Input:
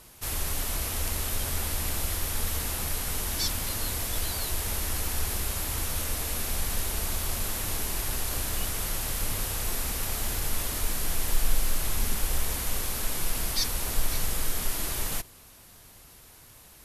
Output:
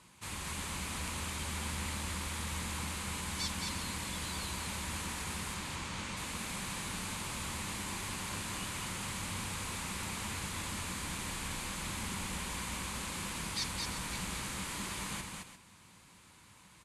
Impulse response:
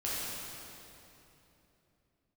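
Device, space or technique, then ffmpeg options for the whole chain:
car door speaker: -filter_complex "[0:a]asettb=1/sr,asplit=3[a][b][c];[a]atrim=end=5.544[d];[b]atrim=start=5.54:end=6.17,asetpts=PTS-STARTPTS,afade=t=in:d=0.004:c=qsin,afade=t=out:st=0.626:d=0.004:c=qsin,lowpass=6.9k[e];[c]atrim=start=6.166[f];[d][e]acrossfade=d=0.004:c1=hsin:c2=qsin[g];[g][f]acrossfade=d=0.004:c1=qsin:c2=hsin,highpass=81,equalizer=f=190:t=q:w=4:g=8,equalizer=f=430:t=q:w=4:g=-6,equalizer=f=670:t=q:w=4:g=-8,equalizer=f=1k:t=q:w=4:g=6,equalizer=f=2.3k:t=q:w=4:g=4,equalizer=f=5.5k:t=q:w=4:g=-6,lowpass=f=9k:w=0.5412,lowpass=f=9k:w=1.3066,aecho=1:1:217|348:0.631|0.224,volume=-6dB"

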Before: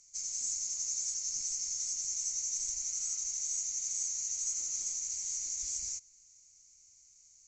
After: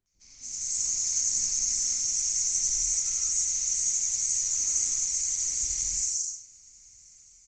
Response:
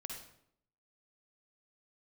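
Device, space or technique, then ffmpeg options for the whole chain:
speakerphone in a meeting room: -filter_complex "[0:a]asplit=3[a][b][c];[a]afade=t=out:st=1.16:d=0.02[d];[b]bandreject=f=60:t=h:w=6,bandreject=f=120:t=h:w=6,bandreject=f=180:t=h:w=6,bandreject=f=240:t=h:w=6,afade=t=in:st=1.16:d=0.02,afade=t=out:st=2.17:d=0.02[e];[c]afade=t=in:st=2.17:d=0.02[f];[d][e][f]amix=inputs=3:normalize=0,acrossover=split=550|4700[g][h][i];[h]adelay=60[j];[i]adelay=280[k];[g][j][k]amix=inputs=3:normalize=0[l];[1:a]atrim=start_sample=2205[m];[l][m]afir=irnorm=-1:irlink=0,dynaudnorm=f=180:g=7:m=13dB,volume=3dB" -ar 48000 -c:a libopus -b:a 24k

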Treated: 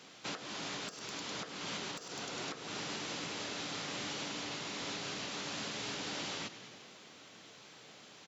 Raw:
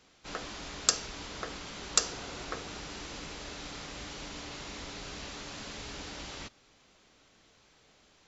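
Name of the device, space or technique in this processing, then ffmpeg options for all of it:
broadcast voice chain: -filter_complex "[0:a]asplit=7[a][b][c][d][e][f][g];[b]adelay=101,afreqshift=-130,volume=-16dB[h];[c]adelay=202,afreqshift=-260,volume=-20dB[i];[d]adelay=303,afreqshift=-390,volume=-24dB[j];[e]adelay=404,afreqshift=-520,volume=-28dB[k];[f]adelay=505,afreqshift=-650,volume=-32.1dB[l];[g]adelay=606,afreqshift=-780,volume=-36.1dB[m];[a][h][i][j][k][l][m]amix=inputs=7:normalize=0,highpass=f=120:w=0.5412,highpass=f=120:w=1.3066,deesser=0.9,acompressor=threshold=-44dB:ratio=4,equalizer=f=3.2k:t=o:w=0.77:g=2,alimiter=level_in=13.5dB:limit=-24dB:level=0:latency=1:release=327,volume=-13.5dB,volume=7.5dB"

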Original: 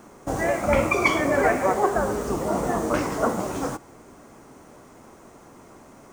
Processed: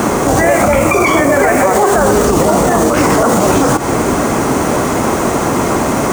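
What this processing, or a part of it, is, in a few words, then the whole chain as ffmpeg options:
mastering chain: -filter_complex "[0:a]highpass=42,equalizer=f=5.3k:t=o:w=0.22:g=-2,acrossover=split=2400|5700[a][b][c];[a]acompressor=threshold=-33dB:ratio=4[d];[b]acompressor=threshold=-53dB:ratio=4[e];[c]acompressor=threshold=-49dB:ratio=4[f];[d][e][f]amix=inputs=3:normalize=0,acompressor=threshold=-38dB:ratio=2.5,alimiter=level_in=35.5dB:limit=-1dB:release=50:level=0:latency=1,volume=-1dB"

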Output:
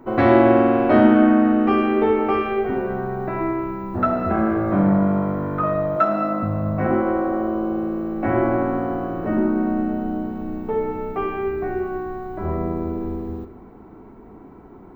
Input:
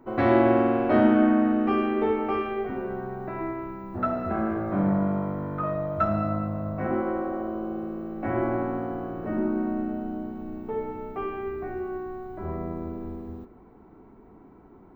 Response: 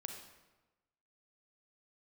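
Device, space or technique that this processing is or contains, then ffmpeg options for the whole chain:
ducked reverb: -filter_complex "[0:a]asettb=1/sr,asplit=3[a][b][c];[a]atrim=end=5.964[d];[b]atrim=start=5.96:end=6.43,asetpts=PTS-STARTPTS,afade=t=in:d=0.004:c=qsin,afade=t=out:st=0.466:d=0.004:c=qsin,highpass=f=230:w=0.5412,highpass=f=230:w=1.3066[e];[c]atrim=start=6.426[f];[d][e]acrossfade=d=0.004:c1=hsin:c2=qsin[g];[g][f]acrossfade=d=0.004:c1=qsin:c2=hsin,asplit=3[h][i][j];[1:a]atrim=start_sample=2205[k];[i][k]afir=irnorm=-1:irlink=0[l];[j]apad=whole_len=659557[m];[l][m]sidechaincompress=threshold=-25dB:ratio=8:attack=16:release=390,volume=-2.5dB[n];[h][n]amix=inputs=2:normalize=0,volume=4.5dB"

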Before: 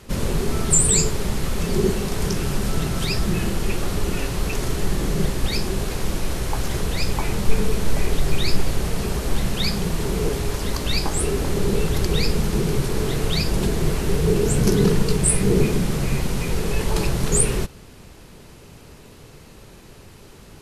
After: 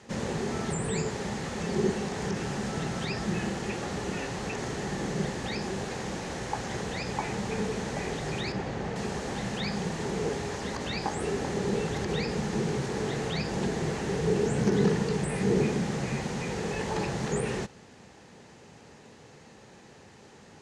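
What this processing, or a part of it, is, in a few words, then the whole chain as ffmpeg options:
car door speaker: -filter_complex "[0:a]asettb=1/sr,asplit=3[a][b][c];[a]atrim=end=8.524[d];[b]atrim=start=8.52:end=8.96,asetpts=PTS-STARTPTS,afade=t=in:d=0.004:c=qsin,afade=t=out:st=0.436:d=0.004:c=qsin,aemphasis=mode=reproduction:type=75fm[e];[c]atrim=start=8.956[f];[d][e]acrossfade=d=0.004:c1=hsin:c2=qsin[g];[g][f]acrossfade=d=0.004:c1=qsin:c2=hsin,highpass=110,equalizer=f=220:t=q:w=4:g=4,equalizer=f=500:t=q:w=4:g=4,equalizer=f=810:t=q:w=4:g=8,equalizer=f=1.8k:t=q:w=4:g=7,equalizer=f=6.5k:t=q:w=4:g=4,lowpass=f=8.1k:w=0.5412,lowpass=f=8.1k:w=1.3066,acrossover=split=3100[h][i];[i]acompressor=threshold=-33dB:ratio=4:attack=1:release=60[j];[h][j]amix=inputs=2:normalize=0,volume=-7.5dB"

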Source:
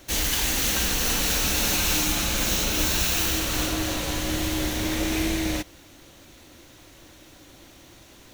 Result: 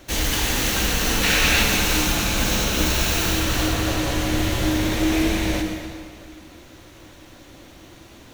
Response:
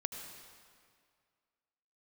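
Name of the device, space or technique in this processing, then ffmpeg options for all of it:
swimming-pool hall: -filter_complex "[0:a]asettb=1/sr,asplit=3[a][b][c];[a]atrim=end=1.234[d];[b]atrim=start=1.23:end=1.63,asetpts=PTS-STARTPTS,afade=t=in:d=0.004:c=qsin,afade=t=out:st=0.396:d=0.004:c=qsin,equalizer=f=2.2k:w=0.9:g=9[e];[c]atrim=start=1.626[f];[d][e]acrossfade=d=0.004:c1=hsin:c2=qsin[g];[g][f]acrossfade=d=0.004:c1=qsin:c2=hsin[h];[1:a]atrim=start_sample=2205[i];[h][i]afir=irnorm=-1:irlink=0,highshelf=f=4k:g=-6.5,volume=5dB"

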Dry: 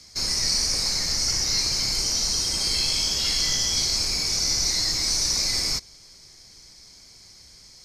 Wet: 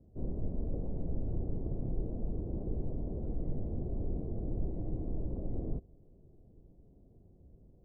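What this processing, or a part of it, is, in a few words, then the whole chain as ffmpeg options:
under water: -af "lowpass=f=450:w=0.5412,lowpass=f=450:w=1.3066,equalizer=f=680:t=o:w=0.48:g=6,volume=1dB"

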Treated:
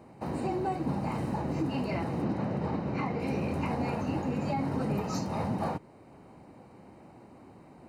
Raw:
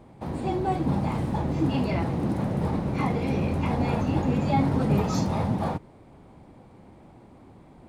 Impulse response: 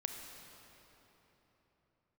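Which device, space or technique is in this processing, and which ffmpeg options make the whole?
PA system with an anti-feedback notch: -filter_complex "[0:a]asettb=1/sr,asplit=3[a][b][c];[a]atrim=end=2.224[d];[b]atrim=start=2.22:end=3.2,asetpts=PTS-STARTPTS,afade=t=in:d=0.004:c=qsin,afade=t=out:st=0.976:d=0.004:c=qsin,lowpass=5.1k[e];[c]atrim=start=3.196[f];[d][e]acrossfade=d=0.004:c1=hsin:c2=qsin[g];[g][f]acrossfade=d=0.004:c1=qsin:c2=hsin,highpass=f=160:p=1,asuperstop=centerf=3400:order=20:qfactor=7.4,alimiter=limit=-21.5dB:level=0:latency=1:release=457"

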